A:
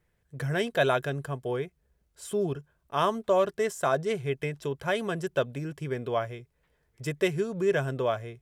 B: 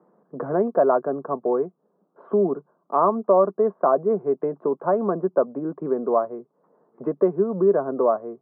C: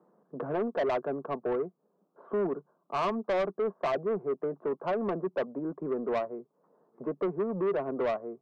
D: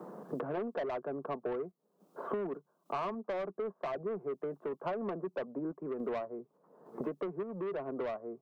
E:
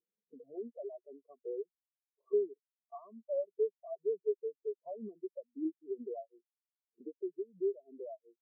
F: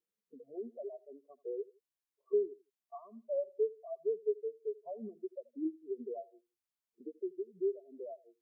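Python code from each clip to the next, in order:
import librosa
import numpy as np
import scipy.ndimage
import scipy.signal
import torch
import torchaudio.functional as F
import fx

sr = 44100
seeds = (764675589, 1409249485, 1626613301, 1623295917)

y1 = scipy.signal.sosfilt(scipy.signal.cheby1(4, 1.0, [190.0, 1200.0], 'bandpass', fs=sr, output='sos'), x)
y1 = fx.band_squash(y1, sr, depth_pct=40)
y1 = F.gain(torch.from_numpy(y1), 8.5).numpy()
y2 = 10.0 ** (-19.5 / 20.0) * np.tanh(y1 / 10.0 ** (-19.5 / 20.0))
y2 = F.gain(torch.from_numpy(y2), -5.0).numpy()
y3 = fx.tremolo_random(y2, sr, seeds[0], hz=3.5, depth_pct=55)
y3 = fx.band_squash(y3, sr, depth_pct=100)
y3 = F.gain(torch.from_numpy(y3), -5.0).numpy()
y4 = fx.spectral_expand(y3, sr, expansion=4.0)
y5 = fx.echo_feedback(y4, sr, ms=82, feedback_pct=31, wet_db=-21)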